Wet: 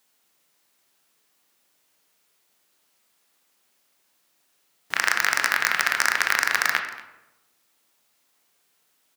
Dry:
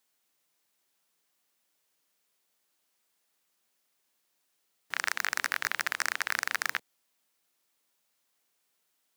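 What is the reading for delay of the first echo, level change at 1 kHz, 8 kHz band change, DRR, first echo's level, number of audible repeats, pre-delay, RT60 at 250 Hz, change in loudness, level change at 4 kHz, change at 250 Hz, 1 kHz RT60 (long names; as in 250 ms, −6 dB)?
231 ms, +10.0 dB, +8.0 dB, 4.0 dB, −19.5 dB, 1, 18 ms, 1.1 s, +9.0 dB, +9.0 dB, +9.5 dB, 0.90 s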